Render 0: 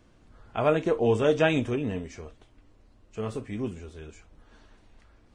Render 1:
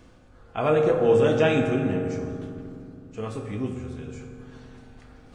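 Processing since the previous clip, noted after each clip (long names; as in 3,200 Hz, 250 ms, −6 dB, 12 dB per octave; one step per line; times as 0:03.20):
reversed playback
upward compression, threshold −42 dBFS
reversed playback
convolution reverb RT60 2.6 s, pre-delay 3 ms, DRR 1.5 dB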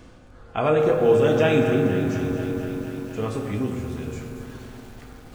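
in parallel at 0 dB: downward compressor, threshold −29 dBFS, peak gain reduction 14 dB
on the sum: feedback echo at a low word length 238 ms, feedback 80%, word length 7 bits, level −11.5 dB
level −1 dB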